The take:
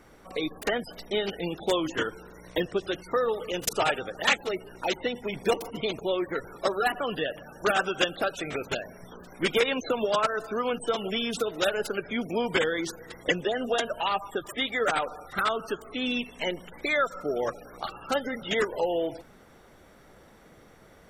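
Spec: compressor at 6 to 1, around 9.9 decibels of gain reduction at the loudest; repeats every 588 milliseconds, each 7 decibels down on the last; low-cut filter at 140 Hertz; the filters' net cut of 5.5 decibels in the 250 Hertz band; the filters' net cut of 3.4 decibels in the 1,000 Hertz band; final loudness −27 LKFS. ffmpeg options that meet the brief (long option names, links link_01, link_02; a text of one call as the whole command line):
ffmpeg -i in.wav -af "highpass=140,equalizer=frequency=250:width_type=o:gain=-7,equalizer=frequency=1000:width_type=o:gain=-4.5,acompressor=threshold=-31dB:ratio=6,aecho=1:1:588|1176|1764|2352|2940:0.447|0.201|0.0905|0.0407|0.0183,volume=8.5dB" out.wav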